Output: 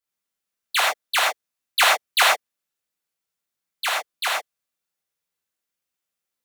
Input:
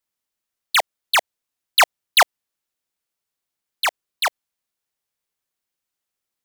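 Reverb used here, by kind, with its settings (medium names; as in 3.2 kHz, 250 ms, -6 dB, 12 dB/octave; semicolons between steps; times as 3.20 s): gated-style reverb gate 140 ms flat, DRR -6 dB; trim -7.5 dB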